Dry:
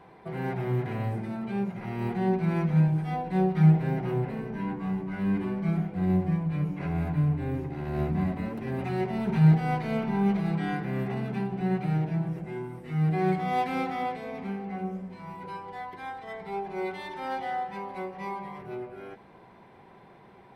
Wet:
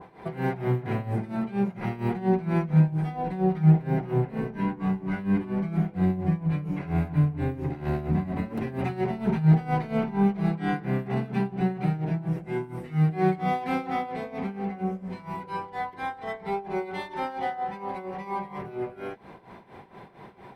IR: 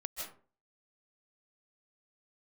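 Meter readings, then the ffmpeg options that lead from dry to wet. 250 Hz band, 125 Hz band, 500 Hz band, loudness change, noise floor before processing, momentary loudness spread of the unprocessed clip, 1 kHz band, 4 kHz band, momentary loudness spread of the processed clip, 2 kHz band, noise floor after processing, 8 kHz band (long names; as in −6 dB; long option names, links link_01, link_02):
+1.5 dB, +1.0 dB, +2.0 dB, +1.0 dB, −53 dBFS, 14 LU, +1.5 dB, 0.0 dB, 12 LU, +1.0 dB, −47 dBFS, can't be measured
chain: -filter_complex "[0:a]asplit=2[link_01][link_02];[link_02]acompressor=threshold=-34dB:ratio=6,volume=1.5dB[link_03];[link_01][link_03]amix=inputs=2:normalize=0,tremolo=f=4.3:d=0.81,adynamicequalizer=threshold=0.00708:dfrequency=1700:dqfactor=0.7:tfrequency=1700:tqfactor=0.7:attack=5:release=100:ratio=0.375:range=2:mode=cutabove:tftype=highshelf,volume=2dB"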